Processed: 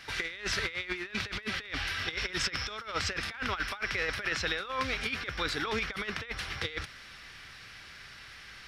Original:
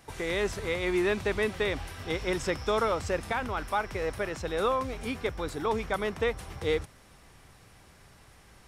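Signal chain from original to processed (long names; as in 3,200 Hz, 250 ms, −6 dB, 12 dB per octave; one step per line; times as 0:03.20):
flat-topped bell 2,700 Hz +15.5 dB 2.4 octaves
compressor whose output falls as the input rises −26 dBFS, ratio −0.5
surface crackle 120 per second −55 dBFS
level −7 dB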